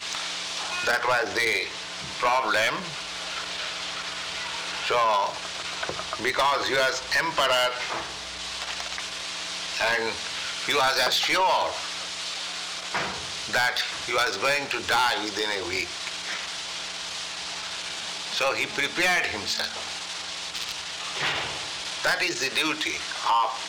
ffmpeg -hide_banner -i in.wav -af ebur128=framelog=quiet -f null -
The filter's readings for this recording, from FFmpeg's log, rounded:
Integrated loudness:
  I:         -25.9 LUFS
  Threshold: -35.9 LUFS
Loudness range:
  LRA:         3.3 LU
  Threshold: -46.0 LUFS
  LRA low:   -27.7 LUFS
  LRA high:  -24.4 LUFS